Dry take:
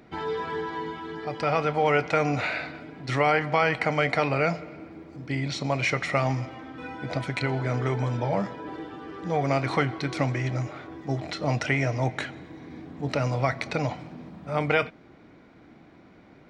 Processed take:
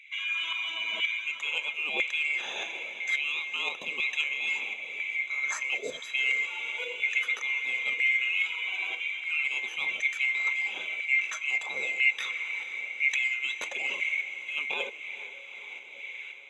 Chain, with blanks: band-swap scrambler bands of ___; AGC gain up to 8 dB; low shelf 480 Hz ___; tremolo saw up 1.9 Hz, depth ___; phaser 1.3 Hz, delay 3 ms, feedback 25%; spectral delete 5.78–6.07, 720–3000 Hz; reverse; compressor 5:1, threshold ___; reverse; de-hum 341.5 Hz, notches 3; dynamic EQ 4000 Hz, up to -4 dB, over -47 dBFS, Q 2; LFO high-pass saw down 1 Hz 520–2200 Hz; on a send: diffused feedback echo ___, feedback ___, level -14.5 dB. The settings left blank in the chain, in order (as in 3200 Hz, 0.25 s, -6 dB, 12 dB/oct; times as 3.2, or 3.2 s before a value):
2000 Hz, +9 dB, 60%, -29 dBFS, 0.462 s, 66%